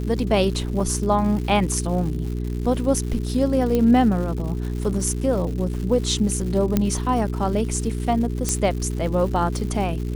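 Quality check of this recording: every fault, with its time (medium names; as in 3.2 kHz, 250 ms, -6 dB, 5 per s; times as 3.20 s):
crackle 230 per s -31 dBFS
hum 60 Hz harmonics 7 -26 dBFS
0.80 s: dropout 3.1 ms
3.75 s: pop -10 dBFS
6.77 s: pop -6 dBFS
8.49 s: pop -7 dBFS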